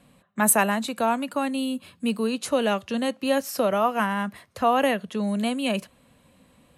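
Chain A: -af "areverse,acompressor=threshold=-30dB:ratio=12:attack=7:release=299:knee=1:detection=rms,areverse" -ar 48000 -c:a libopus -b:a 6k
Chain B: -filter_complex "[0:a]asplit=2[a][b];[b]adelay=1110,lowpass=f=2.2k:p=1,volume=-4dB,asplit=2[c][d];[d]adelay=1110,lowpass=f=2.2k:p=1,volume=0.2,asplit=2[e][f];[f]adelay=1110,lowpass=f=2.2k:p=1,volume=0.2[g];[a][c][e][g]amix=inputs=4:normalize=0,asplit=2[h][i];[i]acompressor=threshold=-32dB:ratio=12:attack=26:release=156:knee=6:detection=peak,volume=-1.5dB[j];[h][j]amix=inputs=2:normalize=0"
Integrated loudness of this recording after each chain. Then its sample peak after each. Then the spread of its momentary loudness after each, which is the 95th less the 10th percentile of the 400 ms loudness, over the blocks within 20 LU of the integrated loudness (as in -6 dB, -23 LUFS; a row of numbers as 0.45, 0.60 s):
-37.5, -22.0 LUFS; -23.5, -4.5 dBFS; 5, 6 LU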